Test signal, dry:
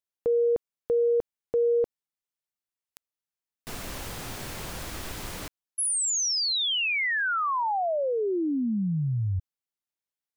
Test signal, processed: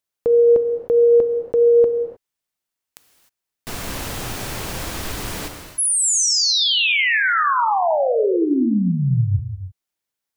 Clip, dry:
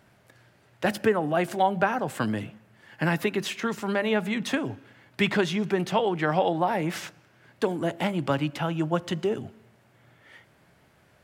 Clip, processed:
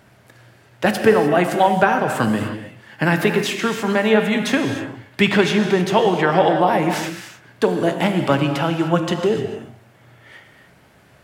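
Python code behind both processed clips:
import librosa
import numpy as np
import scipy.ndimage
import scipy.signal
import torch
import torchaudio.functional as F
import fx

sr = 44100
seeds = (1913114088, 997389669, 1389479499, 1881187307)

y = fx.rev_gated(x, sr, seeds[0], gate_ms=330, shape='flat', drr_db=5.0)
y = y * librosa.db_to_amplitude(7.5)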